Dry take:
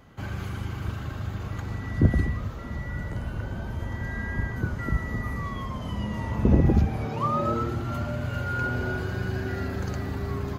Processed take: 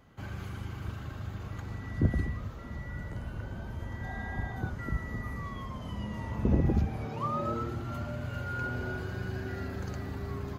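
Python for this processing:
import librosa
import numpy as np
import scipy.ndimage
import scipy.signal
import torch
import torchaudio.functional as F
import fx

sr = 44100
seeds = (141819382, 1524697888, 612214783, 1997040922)

y = fx.small_body(x, sr, hz=(760.0, 3600.0), ring_ms=45, db=16, at=(4.03, 4.7))
y = y * 10.0 ** (-6.5 / 20.0)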